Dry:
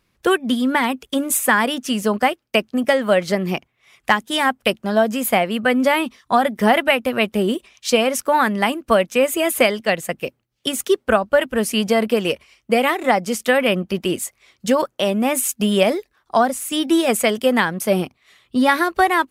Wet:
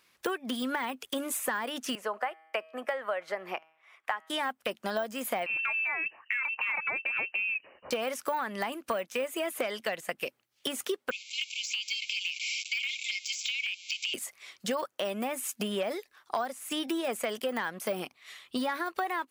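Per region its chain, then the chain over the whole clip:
1.95–4.3 three-band isolator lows -17 dB, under 430 Hz, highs -19 dB, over 2000 Hz + resonator 160 Hz, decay 0.62 s, mix 30%
5.46–7.91 compressor 3:1, threshold -20 dBFS + inverted band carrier 2900 Hz
11.11–14.14 zero-crossing step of -29.5 dBFS + brick-wall FIR band-pass 2100–7700 Hz
whole clip: de-esser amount 80%; HPF 1100 Hz 6 dB/oct; compressor 5:1, threshold -35 dBFS; gain +5 dB

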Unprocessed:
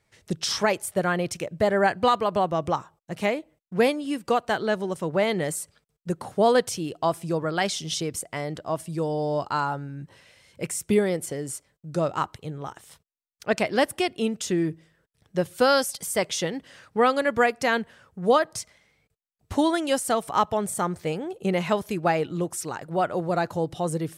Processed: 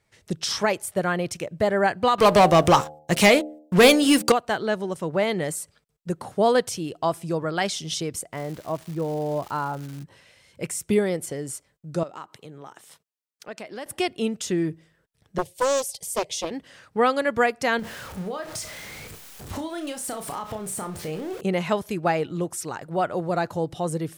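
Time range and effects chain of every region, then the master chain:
2.18–4.32 high shelf 2200 Hz +10.5 dB + sample leveller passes 3 + de-hum 75.97 Hz, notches 11
8.32–10.02 LPF 1300 Hz 6 dB/oct + crackle 470/s -35 dBFS
12.03–13.86 HPF 190 Hz + compressor 2.5:1, threshold -39 dBFS
15.38–16.51 expander -42 dBFS + fixed phaser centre 570 Hz, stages 4 + Doppler distortion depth 0.66 ms
17.79–21.41 zero-crossing step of -34.5 dBFS + compressor 16:1, threshold -28 dBFS + flutter echo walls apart 5.5 m, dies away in 0.24 s
whole clip: dry

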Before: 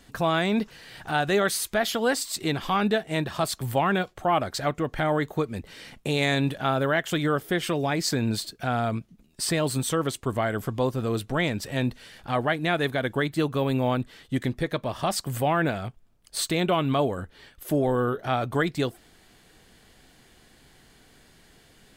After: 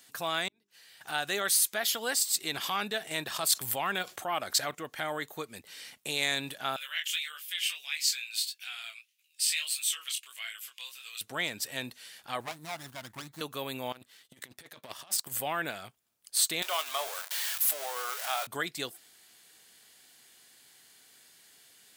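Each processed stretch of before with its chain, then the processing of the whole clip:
0.48–1.01 flipped gate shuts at -24 dBFS, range -31 dB + notches 50/100/150/200/250/300/350/400 Hz + compressor 3:1, threshold -53 dBFS
2.54–4.75 transient shaper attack -3 dB, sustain -7 dB + fast leveller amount 50%
6.76–11.21 chorus 1.6 Hz, delay 19 ms, depth 6.6 ms + resonant high-pass 2600 Hz, resonance Q 3.2 + doubler 15 ms -12.5 dB
12.4–13.41 bell 79 Hz +7 dB 1.7 oct + fixed phaser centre 1100 Hz, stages 4 + running maximum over 17 samples
13.92–15.33 negative-ratio compressor -30 dBFS, ratio -0.5 + power-law curve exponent 1.4
16.62–18.47 zero-crossing step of -28 dBFS + HPF 610 Hz 24 dB/oct + doubler 22 ms -12 dB
whole clip: HPF 72 Hz; tilt +4 dB/oct; gain -8 dB

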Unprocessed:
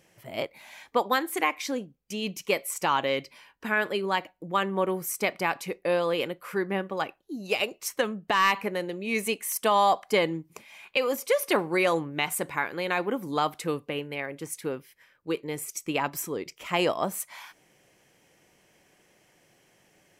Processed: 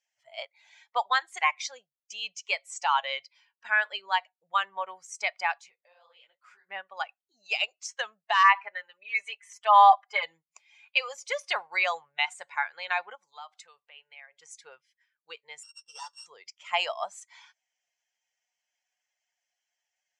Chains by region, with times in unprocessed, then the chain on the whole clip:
5.58–6.69 compressor 10:1, threshold -35 dBFS + detuned doubles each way 59 cents
8.43–10.23 three-band isolator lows -13 dB, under 580 Hz, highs -12 dB, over 2600 Hz + comb 5 ms, depth 82%
13.15–14.4 low shelf 320 Hz -6.5 dB + compressor 2:1, threshold -41 dBFS
15.63–16.26 sample sorter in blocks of 16 samples + fixed phaser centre 440 Hz, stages 8 + ensemble effect
whole clip: per-bin expansion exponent 1.5; de-esser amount 60%; elliptic band-pass 740–7100 Hz, stop band 40 dB; gain +4.5 dB

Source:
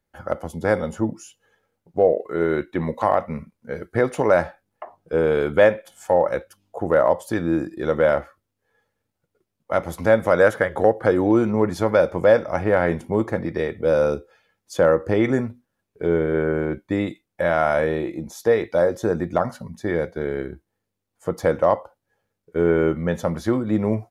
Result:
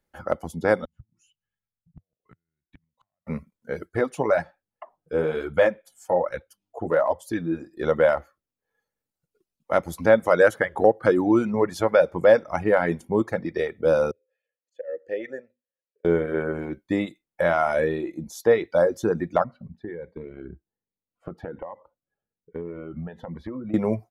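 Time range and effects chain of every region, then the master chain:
0.85–3.27 compressor 12:1, threshold -26 dBFS + flipped gate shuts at -22 dBFS, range -27 dB + EQ curve 130 Hz 0 dB, 430 Hz -28 dB, 2900 Hz -12 dB, 5000 Hz -22 dB
3.89–7.75 bell 91 Hz +5 dB 0.4 oct + flange 1.2 Hz, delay 0.9 ms, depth 8.2 ms, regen -34%
14.11–16.05 bell 7600 Hz +8 dB 1.7 oct + auto swell 0.331 s + vowel filter e
19.44–23.74 compressor, threshold -26 dBFS + air absorption 480 m + cascading phaser rising 1.2 Hz
whole clip: reverb removal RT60 1.5 s; bell 96 Hz -8 dB 0.32 oct

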